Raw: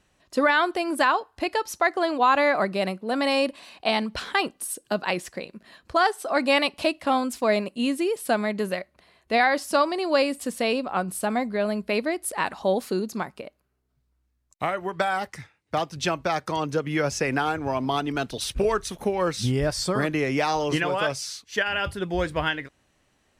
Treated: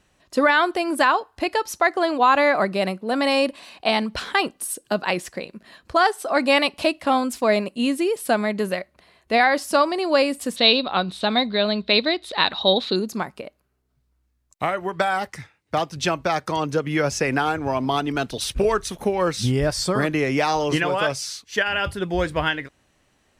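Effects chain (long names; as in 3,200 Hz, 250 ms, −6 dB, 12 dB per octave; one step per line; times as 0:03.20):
0:10.56–0:12.96: low-pass with resonance 3,800 Hz, resonance Q 15
level +3 dB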